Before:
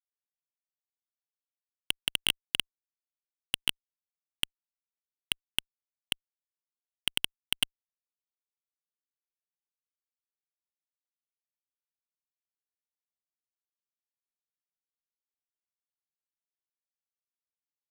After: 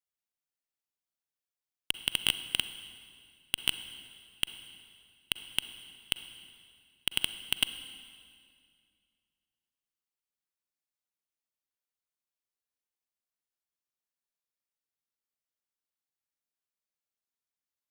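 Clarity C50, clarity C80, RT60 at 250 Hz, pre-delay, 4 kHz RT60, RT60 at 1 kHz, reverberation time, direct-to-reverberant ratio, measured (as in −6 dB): 11.5 dB, 12.5 dB, 2.6 s, 37 ms, 2.1 s, 2.1 s, 2.2 s, 11.0 dB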